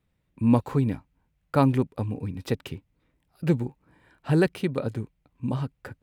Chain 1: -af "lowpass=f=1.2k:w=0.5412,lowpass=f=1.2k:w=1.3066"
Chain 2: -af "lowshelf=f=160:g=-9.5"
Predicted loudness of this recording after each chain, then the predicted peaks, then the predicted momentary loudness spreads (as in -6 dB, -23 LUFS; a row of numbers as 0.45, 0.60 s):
-27.0, -29.5 LUFS; -9.5, -8.5 dBFS; 15, 16 LU